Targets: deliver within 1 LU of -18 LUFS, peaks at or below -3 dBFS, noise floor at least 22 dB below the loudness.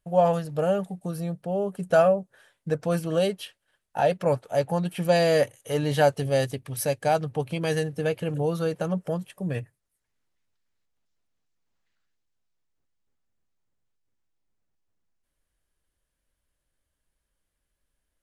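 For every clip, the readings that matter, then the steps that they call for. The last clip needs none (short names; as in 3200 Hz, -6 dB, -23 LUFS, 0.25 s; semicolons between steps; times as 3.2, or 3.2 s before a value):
loudness -26.0 LUFS; peak -8.5 dBFS; loudness target -18.0 LUFS
-> gain +8 dB; limiter -3 dBFS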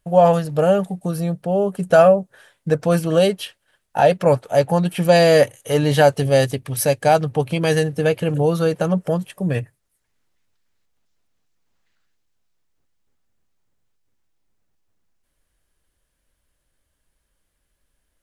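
loudness -18.0 LUFS; peak -3.0 dBFS; noise floor -73 dBFS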